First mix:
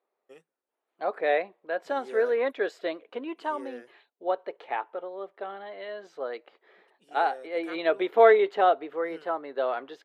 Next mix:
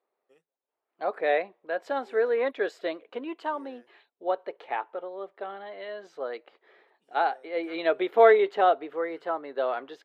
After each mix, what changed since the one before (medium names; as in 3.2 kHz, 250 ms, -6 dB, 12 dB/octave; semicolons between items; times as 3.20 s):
first voice -11.5 dB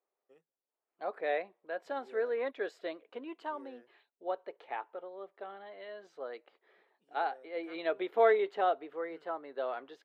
first voice: add treble shelf 2.3 kHz -10 dB; second voice -8.0 dB